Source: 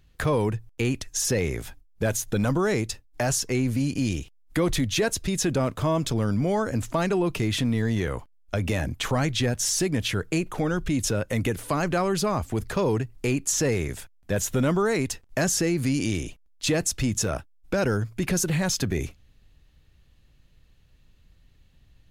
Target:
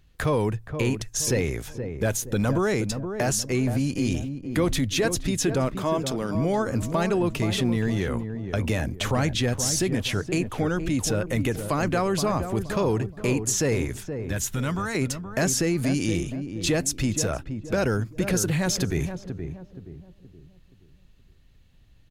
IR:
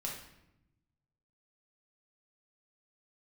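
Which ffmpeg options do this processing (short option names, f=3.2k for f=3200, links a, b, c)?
-filter_complex "[0:a]asettb=1/sr,asplit=3[a][b][c];[a]atrim=end=5.684[d];[b]atrim=start=5.68:end=6.35,asetpts=PTS-STARTPTS,afade=t=in:d=0.004:c=qsin,afade=t=out:st=0.666:d=0.004:c=qsin,highpass=240[e];[c]atrim=start=6.346[f];[d][e]acrossfade=d=0.004:c1=hsin:c2=qsin[g];[g][f]acrossfade=d=0.004:c1=qsin:c2=hsin,asettb=1/sr,asplit=3[h][i][j];[h]atrim=end=13.924[k];[i]atrim=start=13.92:end=14.95,asetpts=PTS-STARTPTS,afade=t=in:d=0.004:c=qsin,afade=t=out:st=1.026:d=0.004:c=qsin,equalizer=f=410:t=o:w=1.2:g=-14.5[l];[j]atrim=start=14.946[m];[k][l]acrossfade=d=0.004:c1=hsin:c2=qsin[n];[n][m]acrossfade=d=0.004:c1=qsin:c2=hsin,asplit=2[o][p];[p]adelay=473,lowpass=f=820:p=1,volume=-7dB,asplit=2[q][r];[r]adelay=473,lowpass=f=820:p=1,volume=0.41,asplit=2[s][t];[t]adelay=473,lowpass=f=820:p=1,volume=0.41,asplit=2[u][v];[v]adelay=473,lowpass=f=820:p=1,volume=0.41,asplit=2[w][x];[x]adelay=473,lowpass=f=820:p=1,volume=0.41[y];[o][q][s][u][w][y]amix=inputs=6:normalize=0"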